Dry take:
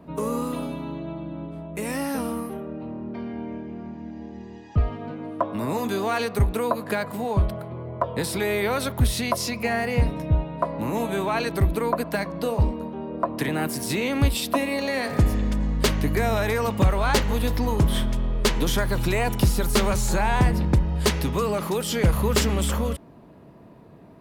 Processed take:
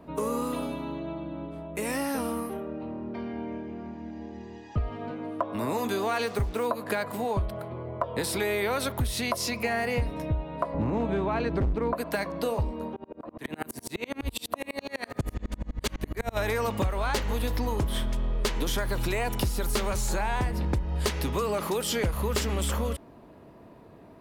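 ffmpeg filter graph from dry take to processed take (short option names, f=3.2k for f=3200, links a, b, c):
-filter_complex "[0:a]asettb=1/sr,asplit=3[a][b][c];[a]atrim=end=6.264[d];[b]atrim=start=6.26:end=6.66,asetpts=PTS-STARTPTS,afade=t=in:d=0.004:c=qsin,afade=t=out:st=0.396:d=0.004:c=qsin,highshelf=f=8.1k:g=-10,acrusher=bits=6:mix=0:aa=0.5[e];[c]atrim=start=6.656[f];[d][e]acrossfade=d=0.004:c1=hsin:c2=qsin[g];[g][f]acrossfade=d=0.004:c1=qsin:c2=hsin,asettb=1/sr,asplit=3[h][i][j];[h]atrim=end=10.744[k];[i]atrim=start=10.74:end=11.93,asetpts=PTS-STARTPTS,afade=t=in:d=0.004:c=qsin,afade=t=out:st=1.186:d=0.004:c=qsin,lowpass=6.1k,aemphasis=mode=reproduction:type=riaa,volume=13.5dB,asoftclip=hard,volume=-13.5dB[l];[j]atrim=start=11.926[m];[k][l]acrossfade=d=0.004:c1=hsin:c2=qsin[n];[n][m]acrossfade=d=0.004:c1=qsin:c2=hsin,asettb=1/sr,asplit=3[o][p][q];[o]atrim=end=12.964[r];[p]atrim=start=12.96:end=16.37,asetpts=PTS-STARTPTS,afade=t=in:d=0.004:c=qsin,afade=t=out:st=3.406:d=0.004:c=qsin,bandreject=f=5.2k:w=13,aeval=exprs='val(0)*pow(10,-36*if(lt(mod(-12*n/s,1),2*abs(-12)/1000),1-mod(-12*n/s,1)/(2*abs(-12)/1000),(mod(-12*n/s,1)-2*abs(-12)/1000)/(1-2*abs(-12)/1000))/20)':c=same[s];[q]atrim=start=16.366[t];[r][s]acrossfade=d=0.004:c1=hsin:c2=qsin[u];[u][t]acrossfade=d=0.004:c1=qsin:c2=hsin,equalizer=f=160:t=o:w=1:g=-6.5,acompressor=threshold=-24dB:ratio=6"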